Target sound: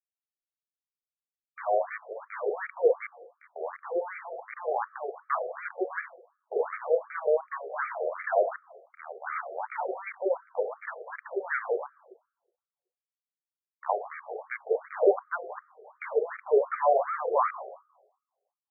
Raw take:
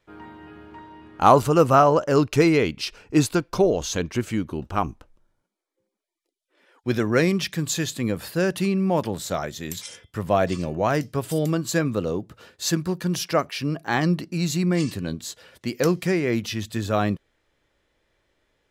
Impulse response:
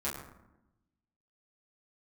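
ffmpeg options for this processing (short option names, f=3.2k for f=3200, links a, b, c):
-filter_complex "[0:a]areverse,highshelf=f=2.3k:g=-3,acrossover=split=380[a][b];[b]acompressor=threshold=-28dB:ratio=3[c];[a][c]amix=inputs=2:normalize=0,aeval=exprs='val(0)*gte(abs(val(0)),0.0398)':c=same,asplit=2[d][e];[1:a]atrim=start_sample=2205,lowpass=f=1k:w=0.5412,lowpass=f=1k:w=1.3066,lowshelf=f=220:g=12[f];[e][f]afir=irnorm=-1:irlink=0,volume=-12dB[g];[d][g]amix=inputs=2:normalize=0,afftfilt=real='re*between(b*sr/1024,540*pow(1700/540,0.5+0.5*sin(2*PI*2.7*pts/sr))/1.41,540*pow(1700/540,0.5+0.5*sin(2*PI*2.7*pts/sr))*1.41)':imag='im*between(b*sr/1024,540*pow(1700/540,0.5+0.5*sin(2*PI*2.7*pts/sr))/1.41,540*pow(1700/540,0.5+0.5*sin(2*PI*2.7*pts/sr))*1.41)':win_size=1024:overlap=0.75,volume=5dB"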